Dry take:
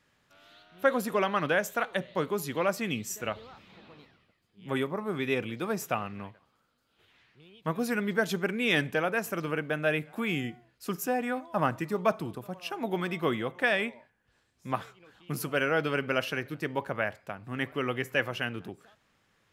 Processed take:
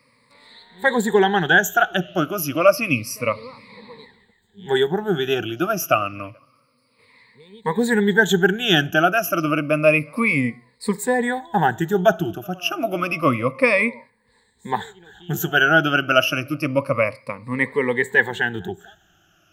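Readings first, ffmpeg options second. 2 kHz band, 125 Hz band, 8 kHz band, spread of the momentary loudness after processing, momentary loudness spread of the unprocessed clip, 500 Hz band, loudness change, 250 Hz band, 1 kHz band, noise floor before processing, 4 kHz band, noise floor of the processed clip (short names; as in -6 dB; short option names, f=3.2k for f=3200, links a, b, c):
+12.0 dB, +10.0 dB, +10.0 dB, 12 LU, 11 LU, +10.0 dB, +10.5 dB, +10.0 dB, +10.5 dB, -72 dBFS, +12.0 dB, -62 dBFS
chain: -af "afftfilt=real='re*pow(10,22/40*sin(2*PI*(0.95*log(max(b,1)*sr/1024/100)/log(2)-(-0.29)*(pts-256)/sr)))':imag='im*pow(10,22/40*sin(2*PI*(0.95*log(max(b,1)*sr/1024/100)/log(2)-(-0.29)*(pts-256)/sr)))':win_size=1024:overlap=0.75,volume=5.5dB"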